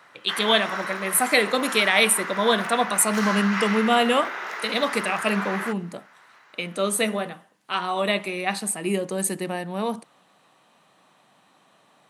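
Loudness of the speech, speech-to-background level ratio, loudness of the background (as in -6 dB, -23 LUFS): -23.0 LUFS, 7.0 dB, -30.0 LUFS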